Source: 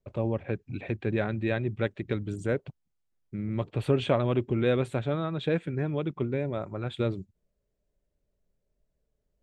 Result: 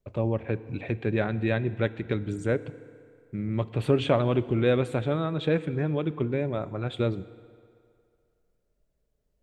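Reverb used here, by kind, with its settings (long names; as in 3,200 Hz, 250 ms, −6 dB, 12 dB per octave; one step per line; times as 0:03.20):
feedback delay network reverb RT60 2.4 s, low-frequency decay 0.75×, high-frequency decay 0.75×, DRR 15 dB
level +2 dB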